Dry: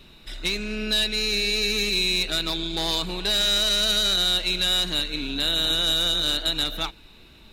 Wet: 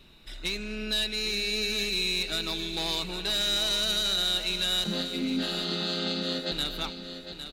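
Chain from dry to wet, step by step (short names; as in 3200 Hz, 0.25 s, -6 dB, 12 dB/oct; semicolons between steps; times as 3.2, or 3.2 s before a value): 4.84–6.52 chord vocoder minor triad, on F3; feedback echo 0.807 s, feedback 38%, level -10 dB; gain -5.5 dB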